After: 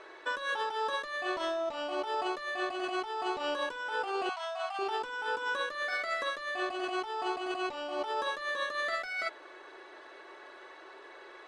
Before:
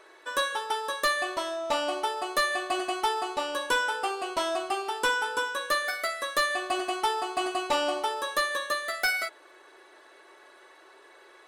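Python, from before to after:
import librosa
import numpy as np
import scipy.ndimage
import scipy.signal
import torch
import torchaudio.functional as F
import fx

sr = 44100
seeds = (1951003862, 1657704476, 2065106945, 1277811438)

y = fx.air_absorb(x, sr, metres=110.0)
y = fx.over_compress(y, sr, threshold_db=-35.0, ratio=-1.0)
y = fx.brickwall_bandpass(y, sr, low_hz=630.0, high_hz=9500.0, at=(4.29, 4.79))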